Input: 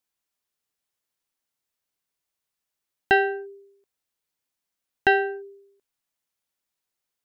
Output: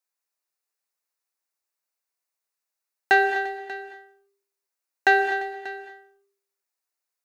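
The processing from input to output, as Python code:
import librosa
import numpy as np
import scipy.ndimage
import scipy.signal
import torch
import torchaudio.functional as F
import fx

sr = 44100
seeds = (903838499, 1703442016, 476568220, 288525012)

y = scipy.signal.sosfilt(scipy.signal.butter(2, 440.0, 'highpass', fs=sr, output='sos'), x)
y = fx.peak_eq(y, sr, hz=3200.0, db=-10.5, octaves=0.29)
y = fx.leveller(y, sr, passes=1)
y = fx.echo_multitap(y, sr, ms=(252, 346, 588), db=(-16.5, -18.0, -17.0))
y = fx.rev_gated(y, sr, seeds[0], gate_ms=260, shape='rising', drr_db=8.0)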